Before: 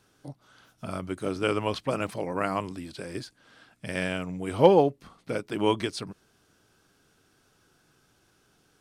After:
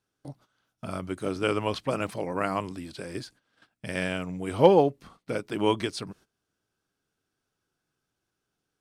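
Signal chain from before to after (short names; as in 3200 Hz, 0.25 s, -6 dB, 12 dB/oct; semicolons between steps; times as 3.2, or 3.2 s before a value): gate -53 dBFS, range -17 dB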